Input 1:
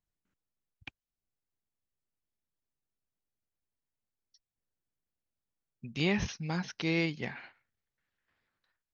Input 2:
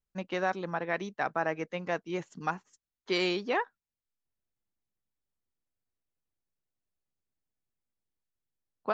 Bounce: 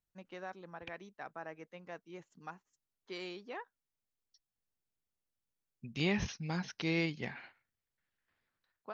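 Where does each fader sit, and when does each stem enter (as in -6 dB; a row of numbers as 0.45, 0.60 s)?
-3.0, -15.0 dB; 0.00, 0.00 s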